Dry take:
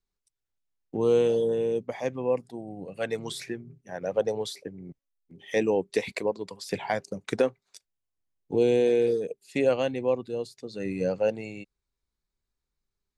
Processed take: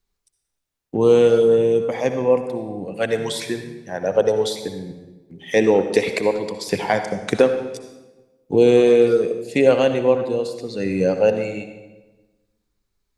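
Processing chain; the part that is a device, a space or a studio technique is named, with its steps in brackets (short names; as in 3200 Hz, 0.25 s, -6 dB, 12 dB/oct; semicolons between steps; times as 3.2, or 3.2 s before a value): saturated reverb return (on a send at -7 dB: reverb RT60 1.2 s, pre-delay 56 ms + soft clip -17.5 dBFS, distortion -16 dB); on the sum: gain +8.5 dB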